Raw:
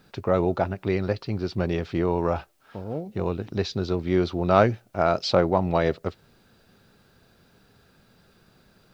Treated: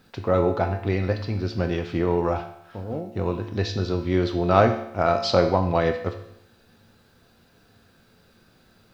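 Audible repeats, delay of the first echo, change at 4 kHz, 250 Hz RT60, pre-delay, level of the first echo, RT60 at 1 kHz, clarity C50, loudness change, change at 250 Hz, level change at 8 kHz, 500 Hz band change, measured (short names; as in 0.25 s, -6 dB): none, none, +1.5 dB, 0.75 s, 4 ms, none, 0.75 s, 8.5 dB, +1.5 dB, +0.5 dB, n/a, +1.0 dB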